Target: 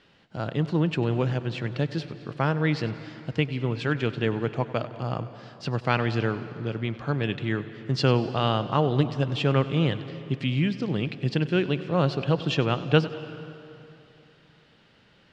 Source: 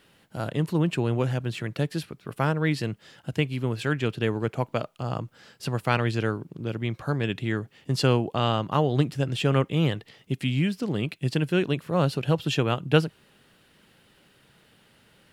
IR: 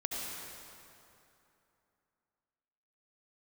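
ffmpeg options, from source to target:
-filter_complex "[0:a]lowpass=f=5700:w=0.5412,lowpass=f=5700:w=1.3066,asplit=2[s0][s1];[1:a]atrim=start_sample=2205,adelay=97[s2];[s1][s2]afir=irnorm=-1:irlink=0,volume=0.158[s3];[s0][s3]amix=inputs=2:normalize=0"

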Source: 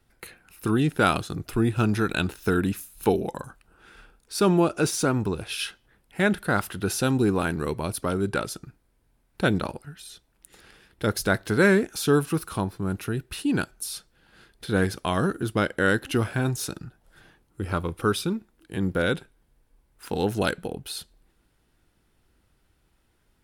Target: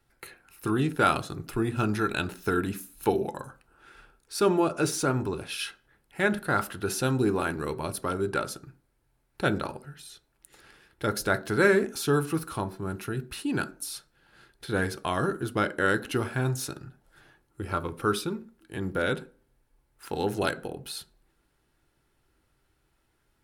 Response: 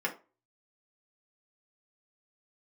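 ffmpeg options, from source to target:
-filter_complex "[0:a]asplit=2[s0][s1];[1:a]atrim=start_sample=2205,asetrate=33957,aresample=44100[s2];[s1][s2]afir=irnorm=-1:irlink=0,volume=0.211[s3];[s0][s3]amix=inputs=2:normalize=0,volume=0.596"

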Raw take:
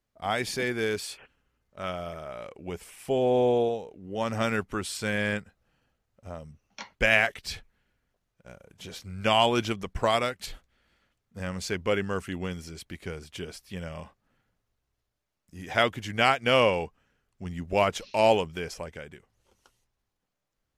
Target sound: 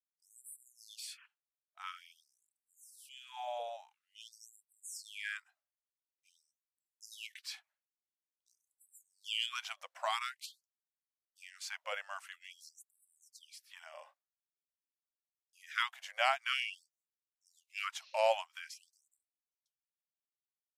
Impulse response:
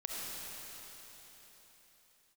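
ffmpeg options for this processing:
-af "agate=range=0.0224:threshold=0.00282:ratio=3:detection=peak,afftfilt=real='re*gte(b*sr/1024,510*pow(7700/510,0.5+0.5*sin(2*PI*0.48*pts/sr)))':imag='im*gte(b*sr/1024,510*pow(7700/510,0.5+0.5*sin(2*PI*0.48*pts/sr)))':win_size=1024:overlap=0.75,volume=0.398"

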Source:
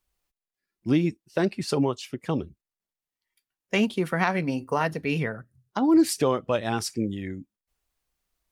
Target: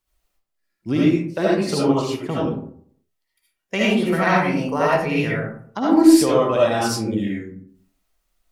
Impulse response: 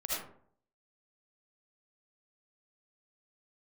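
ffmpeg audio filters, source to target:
-filter_complex "[1:a]atrim=start_sample=2205[s0];[0:a][s0]afir=irnorm=-1:irlink=0,volume=1.41"

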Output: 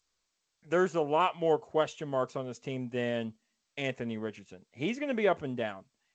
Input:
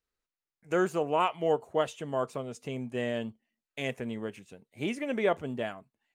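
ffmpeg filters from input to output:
-ar 16000 -c:a g722

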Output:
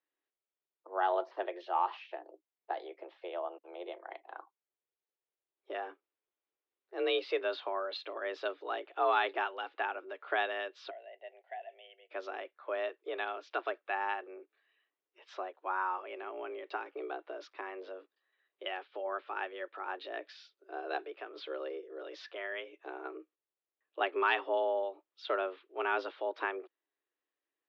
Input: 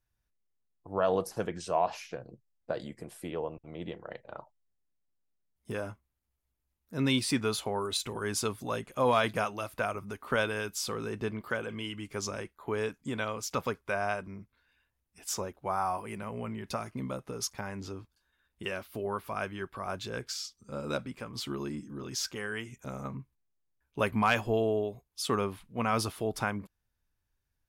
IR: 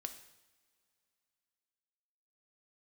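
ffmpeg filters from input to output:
-filter_complex "[0:a]asplit=3[s0][s1][s2];[s0]afade=t=out:st=10.89:d=0.02[s3];[s1]asplit=3[s4][s5][s6];[s4]bandpass=f=530:t=q:w=8,volume=1[s7];[s5]bandpass=f=1840:t=q:w=8,volume=0.501[s8];[s6]bandpass=f=2480:t=q:w=8,volume=0.355[s9];[s7][s8][s9]amix=inputs=3:normalize=0,afade=t=in:st=10.89:d=0.02,afade=t=out:st=12.09:d=0.02[s10];[s2]afade=t=in:st=12.09:d=0.02[s11];[s3][s10][s11]amix=inputs=3:normalize=0,highpass=f=160:t=q:w=0.5412,highpass=f=160:t=q:w=1.307,lowpass=f=3600:t=q:w=0.5176,lowpass=f=3600:t=q:w=0.7071,lowpass=f=3600:t=q:w=1.932,afreqshift=180,volume=0.708"

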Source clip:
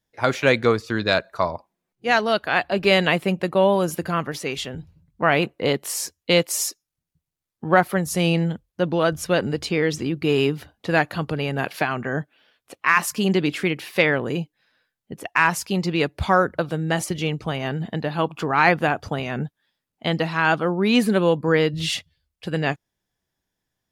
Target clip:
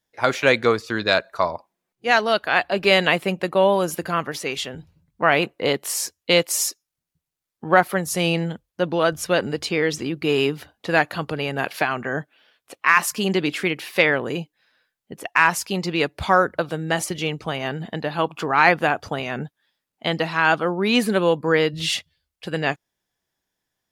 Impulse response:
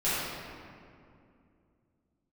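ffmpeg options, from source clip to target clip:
-af "lowshelf=f=240:g=-8.5,volume=1.26"

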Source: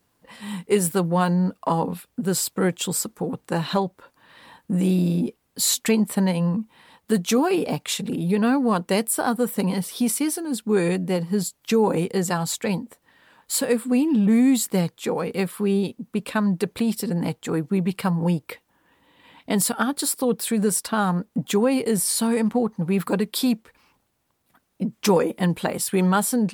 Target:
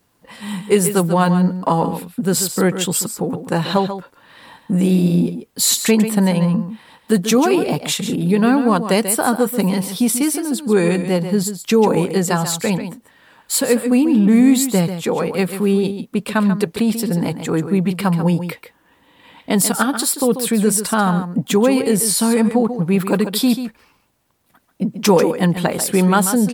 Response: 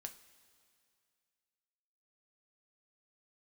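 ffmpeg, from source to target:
-af "aecho=1:1:139:0.316,volume=1.88"

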